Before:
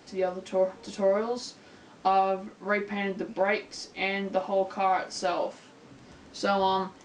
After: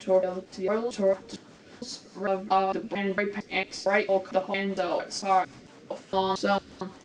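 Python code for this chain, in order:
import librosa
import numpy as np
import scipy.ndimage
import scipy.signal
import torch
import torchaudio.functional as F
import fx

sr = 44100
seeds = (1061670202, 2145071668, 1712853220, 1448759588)

y = fx.block_reorder(x, sr, ms=227.0, group=3)
y = fx.echo_wet_highpass(y, sr, ms=68, feedback_pct=71, hz=3700.0, wet_db=-16)
y = fx.rotary(y, sr, hz=5.0)
y = y * 10.0 ** (3.5 / 20.0)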